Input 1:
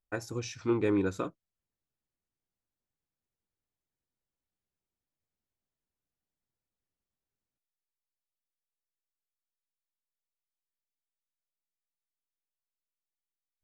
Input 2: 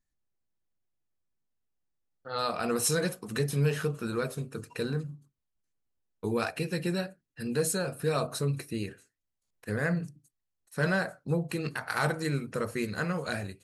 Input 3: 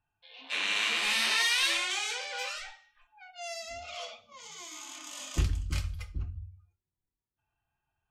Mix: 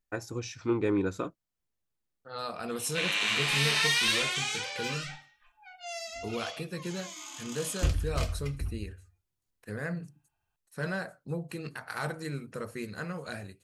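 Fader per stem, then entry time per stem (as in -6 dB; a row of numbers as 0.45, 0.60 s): 0.0, -6.0, +0.5 dB; 0.00, 0.00, 2.45 s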